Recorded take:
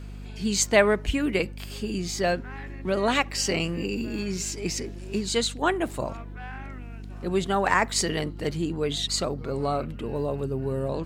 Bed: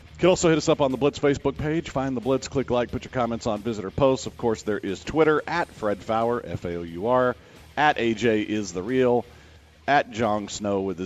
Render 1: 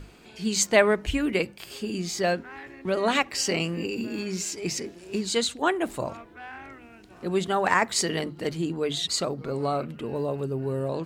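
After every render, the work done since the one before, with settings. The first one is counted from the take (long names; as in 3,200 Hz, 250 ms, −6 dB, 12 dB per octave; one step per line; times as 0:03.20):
mains-hum notches 50/100/150/200/250 Hz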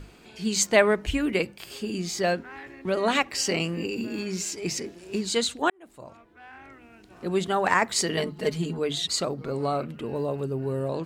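0:05.70–0:07.26: fade in
0:08.17–0:08.79: comb filter 4.7 ms, depth 83%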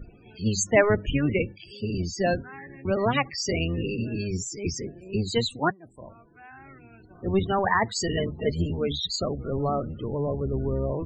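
sub-octave generator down 1 octave, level 0 dB
spectral peaks only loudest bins 32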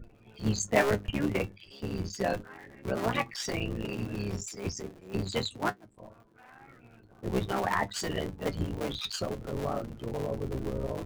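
sub-harmonics by changed cycles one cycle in 3, muted
flanger 0.3 Hz, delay 8.6 ms, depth 2 ms, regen +54%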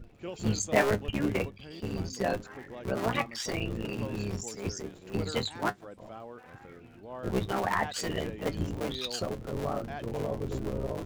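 mix in bed −21.5 dB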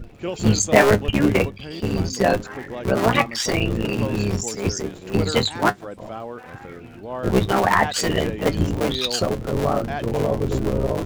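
level +11.5 dB
brickwall limiter −2 dBFS, peak gain reduction 2.5 dB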